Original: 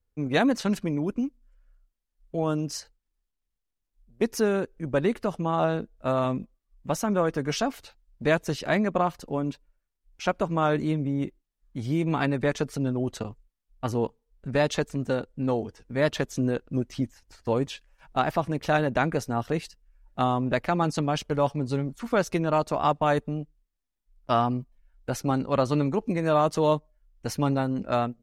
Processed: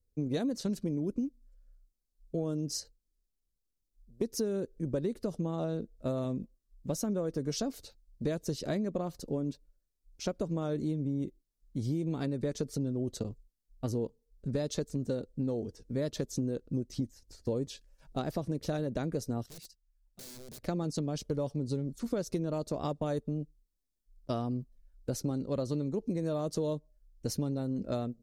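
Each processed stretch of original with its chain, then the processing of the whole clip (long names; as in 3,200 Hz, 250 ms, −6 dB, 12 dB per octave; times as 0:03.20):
0:19.46–0:20.63: guitar amp tone stack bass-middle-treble 5-5-5 + wrap-around overflow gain 40 dB
whole clip: flat-topped bell 1,500 Hz −13 dB 2.4 octaves; downward compressor, threshold −29 dBFS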